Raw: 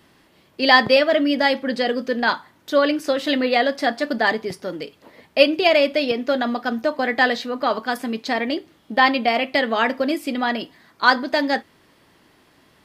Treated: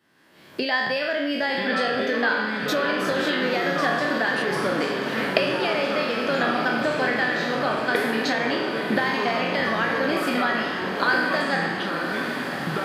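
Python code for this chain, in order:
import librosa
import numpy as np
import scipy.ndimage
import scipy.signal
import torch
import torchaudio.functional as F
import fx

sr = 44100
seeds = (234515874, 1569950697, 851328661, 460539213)

p1 = fx.spec_trails(x, sr, decay_s=0.74)
p2 = fx.recorder_agc(p1, sr, target_db=-2.5, rise_db_per_s=42.0, max_gain_db=30)
p3 = scipy.signal.sosfilt(scipy.signal.butter(2, 120.0, 'highpass', fs=sr, output='sos'), p2)
p4 = fx.peak_eq(p3, sr, hz=1600.0, db=8.0, octaves=0.37)
p5 = fx.echo_pitch(p4, sr, ms=784, semitones=-5, count=2, db_per_echo=-6.0)
p6 = p5 + fx.echo_diffused(p5, sr, ms=974, feedback_pct=72, wet_db=-8.5, dry=0)
y = F.gain(torch.from_numpy(p6), -15.0).numpy()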